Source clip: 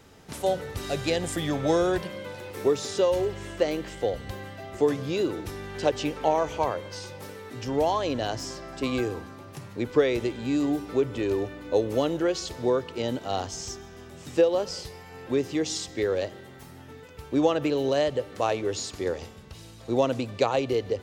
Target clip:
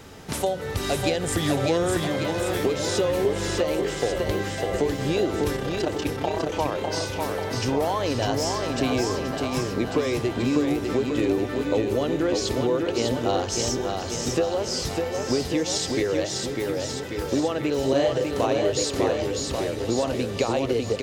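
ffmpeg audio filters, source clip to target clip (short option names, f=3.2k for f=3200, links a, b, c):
-filter_complex "[0:a]acompressor=threshold=-31dB:ratio=6,asettb=1/sr,asplit=3[a][b][c];[a]atrim=end=5.564[d];[b]atrim=start=5.56:end=6.52,asetpts=PTS-STARTPTS,afade=t=in:d=0.004:c=qsin,afade=t=out:st=0.956:d=0.004:c=qsin,tremolo=f=32:d=0.857[e];[c]atrim=start=6.516[f];[d][e]acrossfade=d=0.004:c1=hsin:c2=qsin[g];[g][f]acrossfade=d=0.004:c1=qsin:c2=hsin,asettb=1/sr,asplit=3[h][i][j];[h]atrim=end=17.794[k];[i]atrim=start=17.79:end=18.46,asetpts=PTS-STARTPTS,afade=t=in:d=0.004:c=qsin,afade=t=out:st=0.666:d=0.004:c=qsin,asplit=2[l][m];[m]adelay=38,volume=-2dB[n];[l][n]amix=inputs=2:normalize=0,atrim=end_sample=29547[o];[j]atrim=start=18.456[p];[k][o]acrossfade=d=0.004:c1=hsin:c2=qsin[q];[q][p]acrossfade=d=0.004:c1=qsin:c2=hsin,aecho=1:1:600|1140|1626|2063|2457:0.631|0.398|0.251|0.158|0.1,volume=9dB"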